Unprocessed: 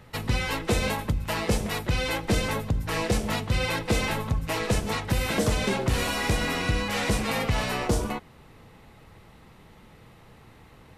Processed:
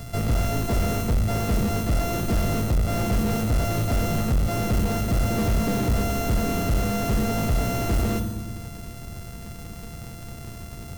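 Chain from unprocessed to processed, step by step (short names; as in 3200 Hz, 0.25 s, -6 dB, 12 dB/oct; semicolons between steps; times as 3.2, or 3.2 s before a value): sample sorter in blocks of 64 samples; high shelf 3500 Hz +12 dB; notch 540 Hz, Q 12; on a send at -13.5 dB: HPF 55 Hz + reverb RT60 1.3 s, pre-delay 5 ms; on the sum: soft clip -34 dBFS, distortion -1 dB; low shelf 450 Hz +11 dB; gain +6 dB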